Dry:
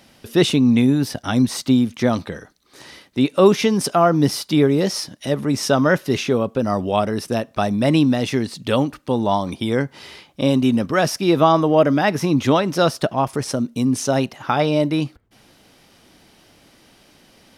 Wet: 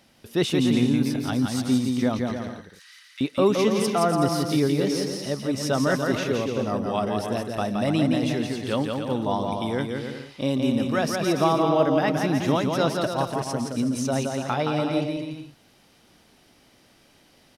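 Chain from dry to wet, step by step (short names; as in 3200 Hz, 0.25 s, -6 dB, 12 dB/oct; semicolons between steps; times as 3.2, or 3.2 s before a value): 2.32–3.21 steep high-pass 1300 Hz 36 dB/oct; on a send: bouncing-ball echo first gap 0.17 s, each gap 0.7×, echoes 5; on the sum: gain -7.5 dB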